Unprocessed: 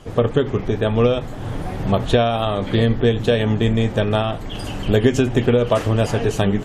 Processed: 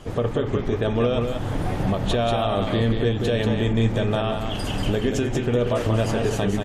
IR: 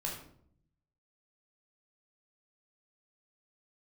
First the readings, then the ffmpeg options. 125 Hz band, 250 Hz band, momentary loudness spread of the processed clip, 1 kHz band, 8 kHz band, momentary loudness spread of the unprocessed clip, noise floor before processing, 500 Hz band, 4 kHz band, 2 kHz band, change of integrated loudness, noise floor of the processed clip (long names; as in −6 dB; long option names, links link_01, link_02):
−3.5 dB, −3.5 dB, 4 LU, −3.0 dB, −1.5 dB, 9 LU, −30 dBFS, −4.5 dB, −3.0 dB, −4.0 dB, −4.0 dB, −28 dBFS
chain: -filter_complex "[0:a]alimiter=limit=-13.5dB:level=0:latency=1:release=179,aecho=1:1:187:0.531,asplit=2[link_01][link_02];[1:a]atrim=start_sample=2205,asetrate=26019,aresample=44100[link_03];[link_02][link_03]afir=irnorm=-1:irlink=0,volume=-22dB[link_04];[link_01][link_04]amix=inputs=2:normalize=0"